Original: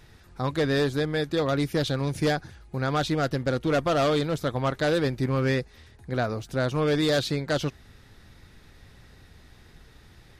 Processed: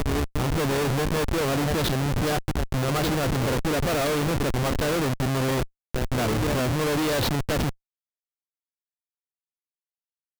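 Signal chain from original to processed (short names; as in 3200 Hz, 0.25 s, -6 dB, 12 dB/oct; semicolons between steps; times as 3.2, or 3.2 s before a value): reverse echo 0.628 s -11 dB; Schmitt trigger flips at -30 dBFS; gain +3.5 dB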